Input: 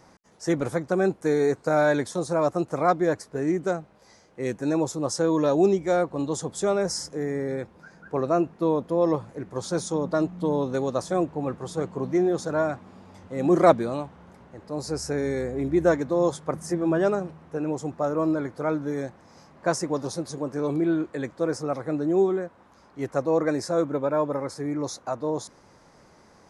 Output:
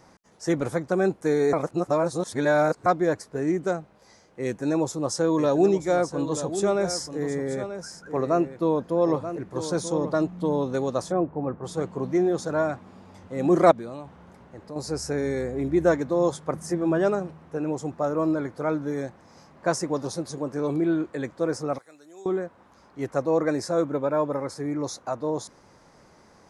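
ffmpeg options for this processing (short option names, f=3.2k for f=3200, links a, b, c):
-filter_complex "[0:a]asettb=1/sr,asplit=3[a][b][c];[a]atrim=end=4.454[d];[b]atrim=start=4.45:end=10.21,asetpts=PTS-STARTPTS,afade=t=in:d=0.004:c=qsin,afade=t=out:st=5.756:d=0.004:c=qsin,aecho=1:1:934:0.299,atrim=end_sample=254016[e];[c]atrim=start=10.206[f];[d][e]acrossfade=d=0.004:c1=hsin:c2=qsin[g];[g][f]acrossfade=d=0.004:c1=qsin:c2=hsin,asplit=3[h][i][j];[h]afade=t=out:st=11.11:d=0.02[k];[i]lowpass=1.4k,afade=t=in:st=11.11:d=0.02,afade=t=out:st=11.63:d=0.02[l];[j]afade=t=in:st=11.63:d=0.02[m];[k][l][m]amix=inputs=3:normalize=0,asettb=1/sr,asplit=3[n][o][p];[n]atrim=end=13.714[q];[o]atrim=start=13.71:end=14.76,asetpts=PTS-STARTPTS,afade=t=in:d=0.004:c=qsin,afade=t=out:st=1.046:d=0.004:c=qsin,acompressor=threshold=-34dB:ratio=3:attack=3.2:release=140:knee=1:detection=peak[r];[p]atrim=start=14.756[s];[q][r]acrossfade=d=0.004:c1=hsin:c2=qsin[t];[t][s]acrossfade=d=0.004:c1=qsin:c2=hsin,asettb=1/sr,asplit=3[u][v][w];[u]atrim=end=21.784[x];[v]atrim=start=21.78:end=22.26,asetpts=PTS-STARTPTS,afade=t=in:d=0.004:c=qsin,afade=t=out:st=0.476:d=0.004:c=qsin,aderivative[y];[w]atrim=start=22.256[z];[x][y]acrossfade=d=0.004:c1=hsin:c2=qsin[aa];[aa][z]acrossfade=d=0.004:c1=qsin:c2=hsin,asplit=3[ab][ac][ad];[ab]atrim=end=1.532[ae];[ac]atrim=start=1.528:end=2.862,asetpts=PTS-STARTPTS,areverse[af];[ad]atrim=start=2.858[ag];[ae][af]acrossfade=d=0.004:c1=hsin:c2=hsin[ah];[ah][ag]acrossfade=d=0.004:c1=hsin:c2=hsin"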